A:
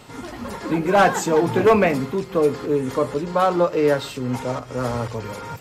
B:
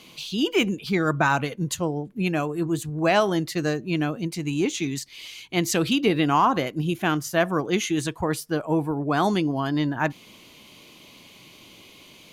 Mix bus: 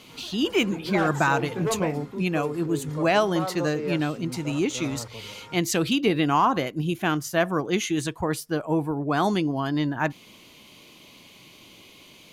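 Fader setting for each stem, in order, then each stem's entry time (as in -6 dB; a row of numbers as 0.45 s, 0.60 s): -13.0 dB, -1.0 dB; 0.00 s, 0.00 s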